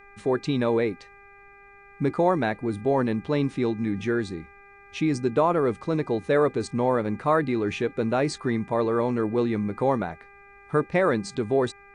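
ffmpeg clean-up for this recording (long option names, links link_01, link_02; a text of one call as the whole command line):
ffmpeg -i in.wav -af "bandreject=frequency=400.4:width_type=h:width=4,bandreject=frequency=800.8:width_type=h:width=4,bandreject=frequency=1201.2:width_type=h:width=4,bandreject=frequency=1601.6:width_type=h:width=4,bandreject=frequency=2002:width_type=h:width=4,bandreject=frequency=2402.4:width_type=h:width=4,agate=range=-21dB:threshold=-43dB" out.wav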